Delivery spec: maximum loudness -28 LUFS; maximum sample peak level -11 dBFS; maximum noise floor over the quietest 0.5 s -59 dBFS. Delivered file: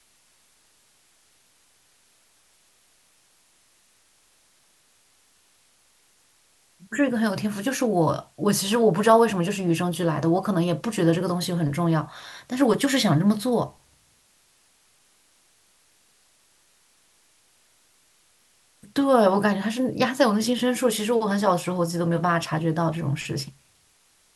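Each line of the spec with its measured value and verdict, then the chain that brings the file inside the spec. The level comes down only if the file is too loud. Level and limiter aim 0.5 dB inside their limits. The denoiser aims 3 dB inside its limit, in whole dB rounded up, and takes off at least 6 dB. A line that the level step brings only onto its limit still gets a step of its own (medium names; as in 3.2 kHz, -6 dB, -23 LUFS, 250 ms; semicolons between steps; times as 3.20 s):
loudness -23.0 LUFS: fail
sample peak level -5.0 dBFS: fail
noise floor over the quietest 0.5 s -62 dBFS: pass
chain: trim -5.5 dB; peak limiter -11.5 dBFS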